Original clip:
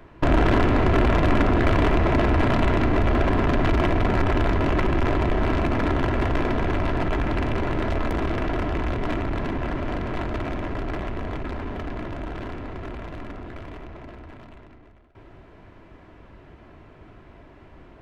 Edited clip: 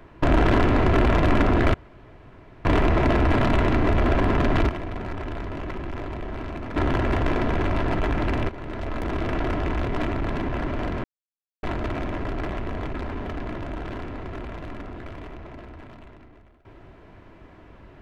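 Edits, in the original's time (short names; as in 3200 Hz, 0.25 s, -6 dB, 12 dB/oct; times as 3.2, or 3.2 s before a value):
1.74 insert room tone 0.91 s
3.78–5.85 gain -10.5 dB
7.58–8.47 fade in linear, from -14.5 dB
10.13 insert silence 0.59 s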